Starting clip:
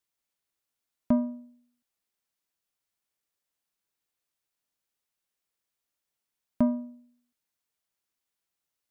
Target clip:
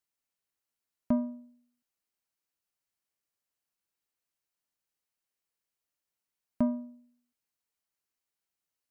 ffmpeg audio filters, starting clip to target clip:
ffmpeg -i in.wav -af "bandreject=frequency=3500:width=14,volume=-3.5dB" out.wav

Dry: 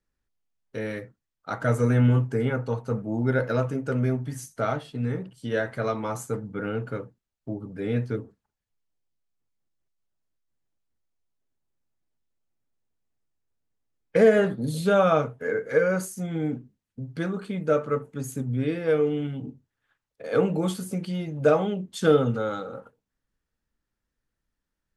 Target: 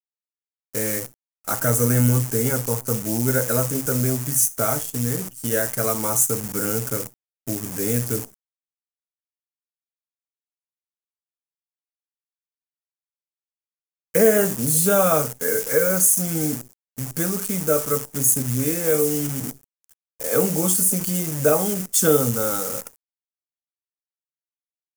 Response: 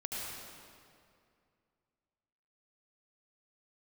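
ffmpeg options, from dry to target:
-filter_complex "[0:a]asplit=2[link_01][link_02];[link_02]acompressor=threshold=-30dB:ratio=12,volume=-2dB[link_03];[link_01][link_03]amix=inputs=2:normalize=0,acrusher=bits=7:dc=4:mix=0:aa=0.000001,aexciter=amount=5.2:drive=8.6:freq=5700"

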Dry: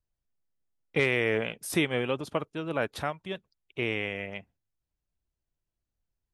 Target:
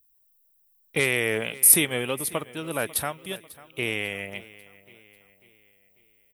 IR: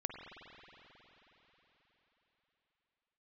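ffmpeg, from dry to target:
-af "aemphasis=mode=production:type=75kf,aexciter=amount=4.2:drive=4.9:freq=8800,aecho=1:1:544|1088|1632|2176:0.106|0.0487|0.0224|0.0103"

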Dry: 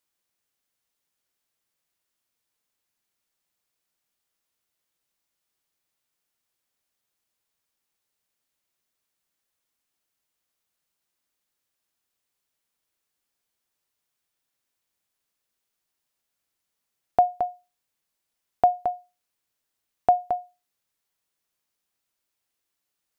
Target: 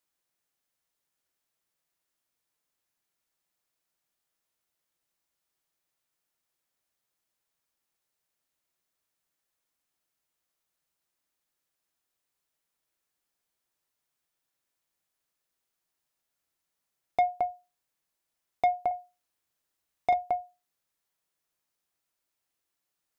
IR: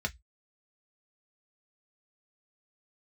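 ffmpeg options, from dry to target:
-filter_complex "[0:a]asoftclip=type=tanh:threshold=-17dB,asettb=1/sr,asplit=3[link_01][link_02][link_03];[link_01]atrim=end=18.874[link_04];[link_02]atrim=start=18.87:end=20.14,asetpts=PTS-STARTPTS,afade=type=in:duration=0.004:curve=qsin,afade=type=out:start_time=1.266:duration=0.004:curve=qsin,asplit=2[link_05][link_06];[link_06]adelay=40,volume=-6dB[link_07];[link_05][link_07]amix=inputs=2:normalize=0,atrim=end_sample=56007[link_08];[link_03]atrim=start=20.136[link_09];[link_04][link_08]acrossfade=duration=0.004:curve1=hsin:curve2=qsin[link_10];[link_10][link_09]acrossfade=duration=0.004:curve1=qsin:curve2=hsin,asplit=2[link_11][link_12];[1:a]atrim=start_sample=2205,afade=type=out:start_time=0.15:duration=0.01,atrim=end_sample=7056[link_13];[link_12][link_13]afir=irnorm=-1:irlink=0,volume=-18.5dB[link_14];[link_11][link_14]amix=inputs=2:normalize=0,volume=-2dB"

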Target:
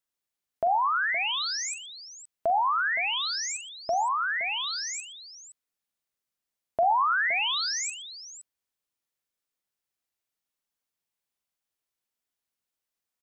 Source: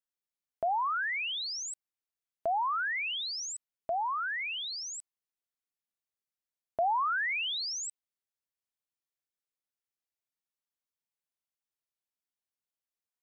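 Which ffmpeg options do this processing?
ffmpeg -i in.wav -af "aecho=1:1:41|45|120|517:0.188|0.237|0.106|0.224,volume=5dB" out.wav

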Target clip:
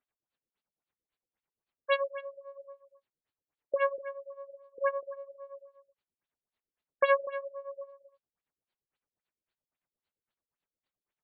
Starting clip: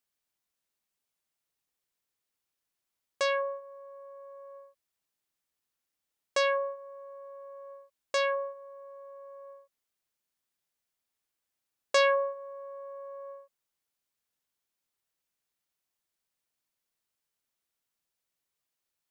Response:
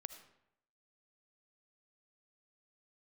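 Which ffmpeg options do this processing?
-filter_complex "[0:a]tremolo=f=5.2:d=0.88,atempo=1.7,asplit=2[link_01][link_02];[link_02]aecho=0:1:245:0.224[link_03];[link_01][link_03]amix=inputs=2:normalize=0,afftfilt=real='re*lt(b*sr/1024,520*pow(4900/520,0.5+0.5*sin(2*PI*3.7*pts/sr)))':imag='im*lt(b*sr/1024,520*pow(4900/520,0.5+0.5*sin(2*PI*3.7*pts/sr)))':win_size=1024:overlap=0.75,volume=4.5dB"

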